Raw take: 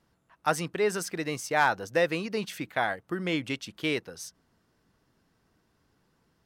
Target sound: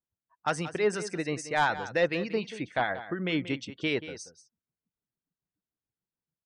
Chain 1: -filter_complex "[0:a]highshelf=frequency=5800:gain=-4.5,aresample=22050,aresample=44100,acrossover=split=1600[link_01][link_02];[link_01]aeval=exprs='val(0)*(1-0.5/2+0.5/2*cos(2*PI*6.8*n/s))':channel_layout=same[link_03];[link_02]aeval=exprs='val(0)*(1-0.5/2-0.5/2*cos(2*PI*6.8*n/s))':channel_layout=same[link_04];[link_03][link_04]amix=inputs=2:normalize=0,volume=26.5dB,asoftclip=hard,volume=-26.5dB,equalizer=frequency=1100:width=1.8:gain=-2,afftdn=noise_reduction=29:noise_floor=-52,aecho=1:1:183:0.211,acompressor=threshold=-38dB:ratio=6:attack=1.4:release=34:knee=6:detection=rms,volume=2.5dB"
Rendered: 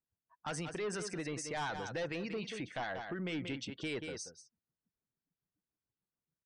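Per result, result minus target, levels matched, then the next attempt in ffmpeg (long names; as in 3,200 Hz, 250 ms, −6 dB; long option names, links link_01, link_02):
downward compressor: peak gain reduction +10 dB; gain into a clipping stage and back: distortion +10 dB
-filter_complex "[0:a]highshelf=frequency=5800:gain=-4.5,aresample=22050,aresample=44100,acrossover=split=1600[link_01][link_02];[link_01]aeval=exprs='val(0)*(1-0.5/2+0.5/2*cos(2*PI*6.8*n/s))':channel_layout=same[link_03];[link_02]aeval=exprs='val(0)*(1-0.5/2-0.5/2*cos(2*PI*6.8*n/s))':channel_layout=same[link_04];[link_03][link_04]amix=inputs=2:normalize=0,volume=26.5dB,asoftclip=hard,volume=-26.5dB,equalizer=frequency=1100:width=1.8:gain=-2,afftdn=noise_reduction=29:noise_floor=-52,aecho=1:1:183:0.211,volume=2.5dB"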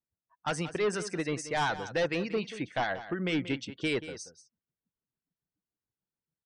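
gain into a clipping stage and back: distortion +10 dB
-filter_complex "[0:a]highshelf=frequency=5800:gain=-4.5,aresample=22050,aresample=44100,acrossover=split=1600[link_01][link_02];[link_01]aeval=exprs='val(0)*(1-0.5/2+0.5/2*cos(2*PI*6.8*n/s))':channel_layout=same[link_03];[link_02]aeval=exprs='val(0)*(1-0.5/2-0.5/2*cos(2*PI*6.8*n/s))':channel_layout=same[link_04];[link_03][link_04]amix=inputs=2:normalize=0,volume=19dB,asoftclip=hard,volume=-19dB,equalizer=frequency=1100:width=1.8:gain=-2,afftdn=noise_reduction=29:noise_floor=-52,aecho=1:1:183:0.211,volume=2.5dB"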